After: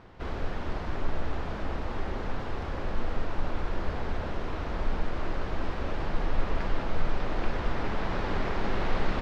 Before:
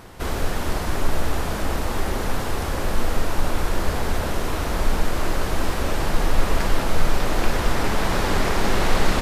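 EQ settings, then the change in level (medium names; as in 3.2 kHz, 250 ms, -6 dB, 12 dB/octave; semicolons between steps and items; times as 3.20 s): distance through air 210 m; -8.0 dB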